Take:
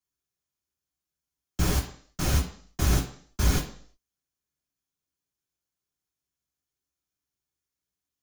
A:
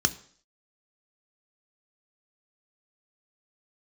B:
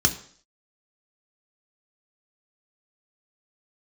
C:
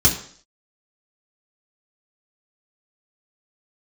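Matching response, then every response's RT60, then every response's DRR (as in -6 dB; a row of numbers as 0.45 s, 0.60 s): C; 0.55 s, 0.55 s, 0.55 s; 9.5 dB, 4.5 dB, -3.5 dB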